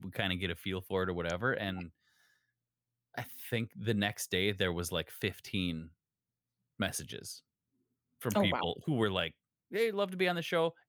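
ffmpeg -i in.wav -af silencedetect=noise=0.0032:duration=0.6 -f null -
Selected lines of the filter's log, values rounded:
silence_start: 1.89
silence_end: 3.14 | silence_duration: 1.25
silence_start: 5.88
silence_end: 6.79 | silence_duration: 0.91
silence_start: 7.39
silence_end: 8.21 | silence_duration: 0.82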